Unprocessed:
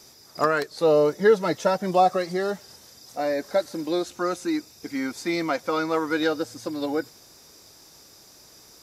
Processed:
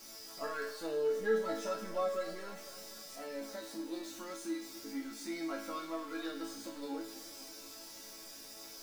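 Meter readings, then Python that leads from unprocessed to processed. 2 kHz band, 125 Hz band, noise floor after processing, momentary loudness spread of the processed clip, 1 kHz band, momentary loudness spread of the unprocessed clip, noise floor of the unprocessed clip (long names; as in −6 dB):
−14.0 dB, −22.0 dB, −51 dBFS, 14 LU, −18.0 dB, 11 LU, −52 dBFS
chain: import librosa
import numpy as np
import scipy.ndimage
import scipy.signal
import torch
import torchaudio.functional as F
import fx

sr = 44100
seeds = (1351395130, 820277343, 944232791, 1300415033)

y = x + 0.5 * 10.0 ** (-29.5 / 20.0) * np.sign(x)
y = fx.resonator_bank(y, sr, root=57, chord='major', decay_s=0.51)
y = fx.echo_warbled(y, sr, ms=248, feedback_pct=68, rate_hz=2.8, cents=69, wet_db=-16.5)
y = F.gain(torch.from_numpy(y), 4.0).numpy()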